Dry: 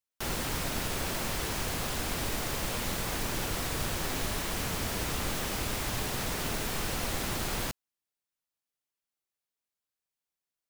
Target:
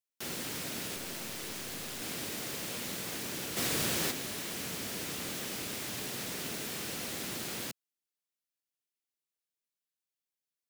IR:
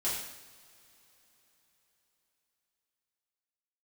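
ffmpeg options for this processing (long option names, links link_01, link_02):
-filter_complex "[0:a]highpass=180,equalizer=frequency=940:width=0.89:gain=-8,asettb=1/sr,asplit=3[link_01][link_02][link_03];[link_01]atrim=end=0.964[link_04];[link_02]atrim=start=0.96:end=2.02,asetpts=PTS-STARTPTS,afade=type=in:duration=0.004:curve=qsin,afade=type=out:start_time=1.056:duration=0.004:curve=qsin,aeval=exprs='clip(val(0),-1,0.00944)':channel_layout=same[link_05];[link_03]atrim=start=2.016[link_06];[link_04][link_05]acrossfade=duration=0.004:curve1=hsin:curve2=qsin[link_07];[link_07][link_06]acrossfade=duration=0.004:curve1=qsin:curve2=hsin,asplit=3[link_08][link_09][link_10];[link_08]afade=type=out:start_time=3.56:duration=0.02[link_11];[link_09]acontrast=82,afade=type=in:start_time=3.56:duration=0.02,afade=type=out:start_time=4.1:duration=0.02[link_12];[link_10]afade=type=in:start_time=4.1:duration=0.02[link_13];[link_11][link_12][link_13]amix=inputs=3:normalize=0,volume=-2.5dB"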